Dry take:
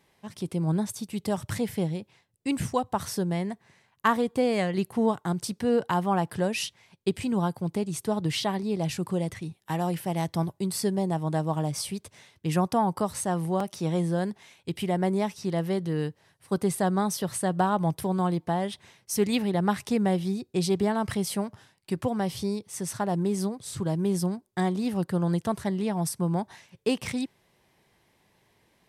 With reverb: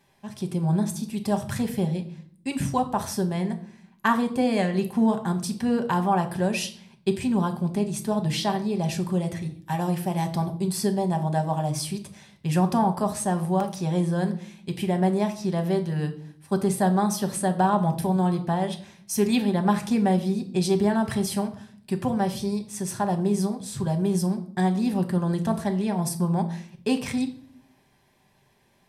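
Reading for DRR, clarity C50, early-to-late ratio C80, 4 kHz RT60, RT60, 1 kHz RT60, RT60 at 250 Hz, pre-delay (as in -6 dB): 5.0 dB, 13.0 dB, 17.0 dB, 0.45 s, 0.55 s, 0.45 s, 1.0 s, 5 ms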